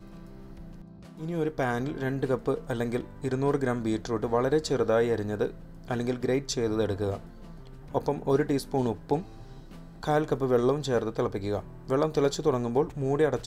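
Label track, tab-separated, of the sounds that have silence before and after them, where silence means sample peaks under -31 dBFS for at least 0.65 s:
1.210000	7.180000	sound
7.940000	9.220000	sound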